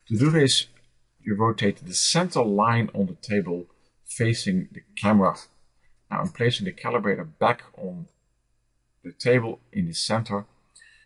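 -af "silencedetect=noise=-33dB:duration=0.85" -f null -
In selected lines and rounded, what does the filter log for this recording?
silence_start: 8.03
silence_end: 9.06 | silence_duration: 1.03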